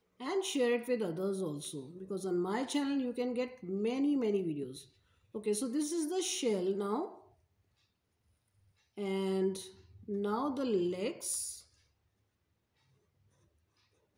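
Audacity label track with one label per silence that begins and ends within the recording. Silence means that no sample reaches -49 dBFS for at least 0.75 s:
7.180000	8.970000	silence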